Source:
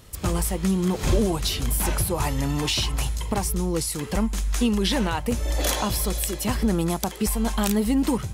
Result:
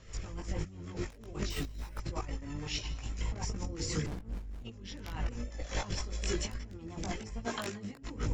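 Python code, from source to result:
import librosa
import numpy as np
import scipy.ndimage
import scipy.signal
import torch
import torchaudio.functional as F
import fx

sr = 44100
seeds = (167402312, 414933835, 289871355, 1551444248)

y = fx.octave_divider(x, sr, octaves=1, level_db=-3.0)
y = scipy.signal.sosfilt(scipy.signal.cheby1(6, 6, 7400.0, 'lowpass', fs=sr, output='sos'), y)
y = fx.peak_eq(y, sr, hz=3900.0, db=-3.5, octaves=1.7)
y = fx.hum_notches(y, sr, base_hz=60, count=8)
y = y + 10.0 ** (-13.0 / 20.0) * np.pad(y, (int(172 * sr / 1000.0), 0))[:len(y)]
y = (np.mod(10.0 ** (16.5 / 20.0) * y + 1.0, 2.0) - 1.0) / 10.0 ** (16.5 / 20.0)
y = fx.rotary(y, sr, hz=6.3)
y = fx.resample_bad(y, sr, factor=4, down='none', up='hold', at=(1.5, 1.98))
y = fx.highpass(y, sr, hz=fx.line((7.44, 340.0), (8.0, 130.0)), slope=12, at=(7.44, 8.0), fade=0.02)
y = fx.over_compress(y, sr, threshold_db=-36.0, ratio=-0.5)
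y = fx.chorus_voices(y, sr, voices=4, hz=0.85, base_ms=19, depth_ms=2.0, mix_pct=45)
y = fx.running_max(y, sr, window=65, at=(4.06, 4.65))
y = F.gain(torch.from_numpy(y), 1.0).numpy()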